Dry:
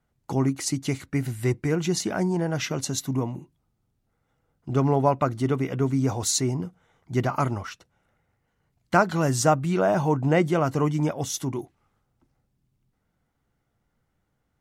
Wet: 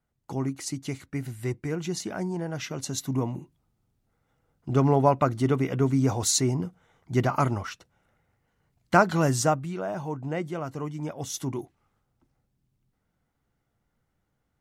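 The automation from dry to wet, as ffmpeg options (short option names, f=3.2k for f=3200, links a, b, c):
-af "volume=8.5dB,afade=t=in:st=2.72:d=0.65:silence=0.473151,afade=t=out:st=9.23:d=0.51:silence=0.298538,afade=t=in:st=11:d=0.48:silence=0.398107"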